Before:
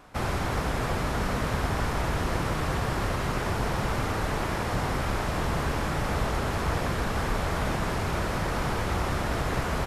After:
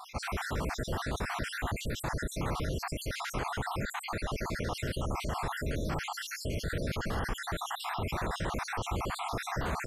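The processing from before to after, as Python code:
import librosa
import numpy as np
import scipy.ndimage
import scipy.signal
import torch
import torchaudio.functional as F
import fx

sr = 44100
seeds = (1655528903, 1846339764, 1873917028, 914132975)

y = fx.spec_dropout(x, sr, seeds[0], share_pct=61)
y = fx.lowpass(y, sr, hz=12000.0, slope=12, at=(3.83, 4.77))
y = fx.env_flatten(y, sr, amount_pct=50)
y = F.gain(torch.from_numpy(y), -6.0).numpy()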